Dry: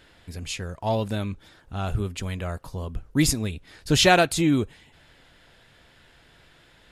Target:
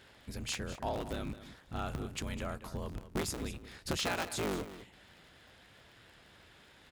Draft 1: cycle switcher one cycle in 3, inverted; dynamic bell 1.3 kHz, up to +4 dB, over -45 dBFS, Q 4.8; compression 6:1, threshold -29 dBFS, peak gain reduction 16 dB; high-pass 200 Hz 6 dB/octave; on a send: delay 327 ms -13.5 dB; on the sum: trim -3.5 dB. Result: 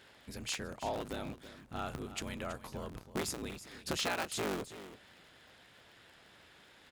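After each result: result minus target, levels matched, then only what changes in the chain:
echo 123 ms late; 125 Hz band -4.0 dB
change: delay 204 ms -13.5 dB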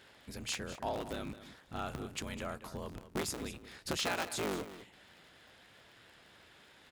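125 Hz band -4.0 dB
change: high-pass 64 Hz 6 dB/octave

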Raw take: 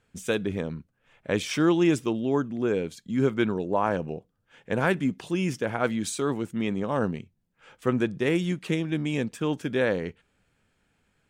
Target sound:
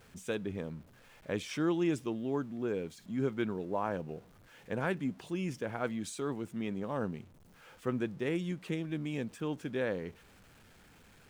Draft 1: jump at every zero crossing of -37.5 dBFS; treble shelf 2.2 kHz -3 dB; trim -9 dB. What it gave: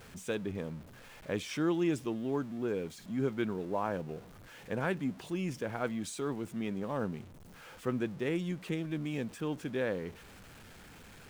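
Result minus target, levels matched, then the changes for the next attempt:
jump at every zero crossing: distortion +7 dB
change: jump at every zero crossing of -44.5 dBFS

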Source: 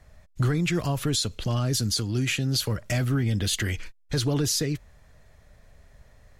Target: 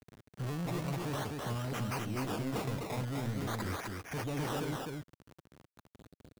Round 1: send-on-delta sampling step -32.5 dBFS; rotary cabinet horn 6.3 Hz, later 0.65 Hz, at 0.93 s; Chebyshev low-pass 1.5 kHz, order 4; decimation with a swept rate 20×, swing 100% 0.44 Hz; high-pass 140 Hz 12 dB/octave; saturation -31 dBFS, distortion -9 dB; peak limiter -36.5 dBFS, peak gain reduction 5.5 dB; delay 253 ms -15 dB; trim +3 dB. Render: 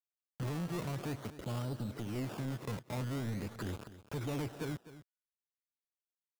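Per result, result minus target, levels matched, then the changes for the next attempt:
echo-to-direct -12 dB; send-on-delta sampling: distortion +11 dB; 2 kHz band -3.5 dB
change: delay 253 ms -3 dB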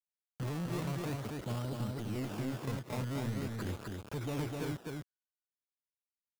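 send-on-delta sampling: distortion +11 dB; 2 kHz band -3.0 dB
change: send-on-delta sampling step -43.5 dBFS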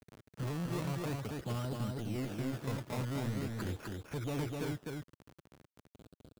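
2 kHz band -3.0 dB
remove: Chebyshev low-pass 1.5 kHz, order 4

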